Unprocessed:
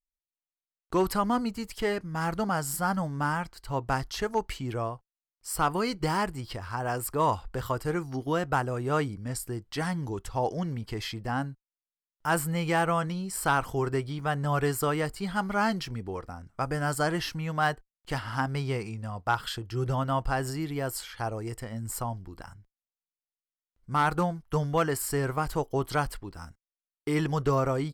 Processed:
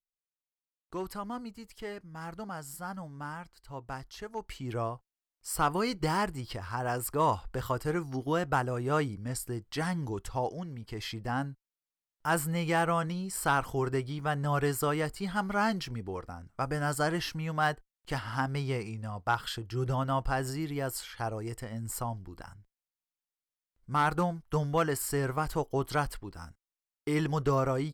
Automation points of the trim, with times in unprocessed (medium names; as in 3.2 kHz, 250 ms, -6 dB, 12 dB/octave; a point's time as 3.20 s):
4.31 s -11.5 dB
4.77 s -1.5 dB
10.32 s -1.5 dB
10.68 s -9 dB
11.12 s -2 dB